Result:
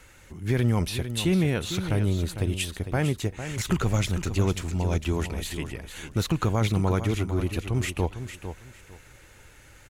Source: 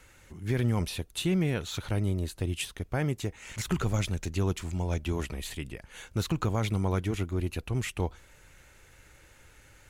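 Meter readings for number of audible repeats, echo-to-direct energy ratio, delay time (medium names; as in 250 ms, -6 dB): 2, -10.0 dB, 453 ms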